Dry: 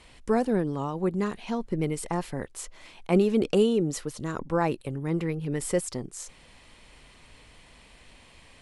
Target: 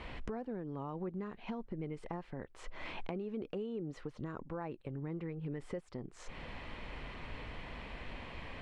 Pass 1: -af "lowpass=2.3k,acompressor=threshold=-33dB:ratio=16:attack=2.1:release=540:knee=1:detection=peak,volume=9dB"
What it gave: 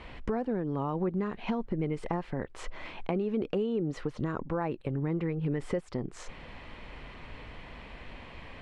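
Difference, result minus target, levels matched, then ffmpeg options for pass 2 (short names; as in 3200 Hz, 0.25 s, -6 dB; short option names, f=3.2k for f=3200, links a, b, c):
compressor: peak gain reduction -10 dB
-af "lowpass=2.3k,acompressor=threshold=-43.5dB:ratio=16:attack=2.1:release=540:knee=1:detection=peak,volume=9dB"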